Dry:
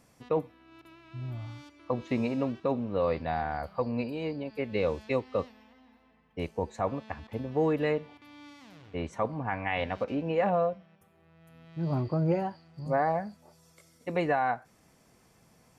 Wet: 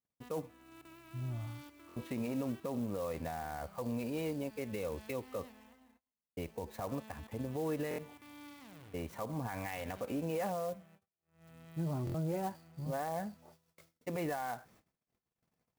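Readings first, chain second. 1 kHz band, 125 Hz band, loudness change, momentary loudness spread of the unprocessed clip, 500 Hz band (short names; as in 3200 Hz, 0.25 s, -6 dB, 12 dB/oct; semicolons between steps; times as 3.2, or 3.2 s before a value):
-10.0 dB, -6.0 dB, -8.5 dB, 16 LU, -9.5 dB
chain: gate -58 dBFS, range -37 dB; limiter -27 dBFS, peak gain reduction 10 dB; stuck buffer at 1.87/7.89/12.05, samples 1024, times 3; clock jitter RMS 0.034 ms; gain -2 dB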